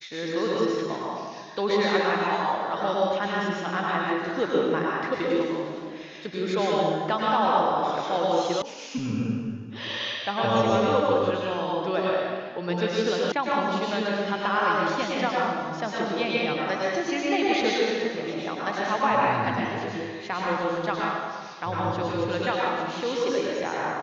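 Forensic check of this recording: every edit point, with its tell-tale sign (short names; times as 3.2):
8.62 sound cut off
13.32 sound cut off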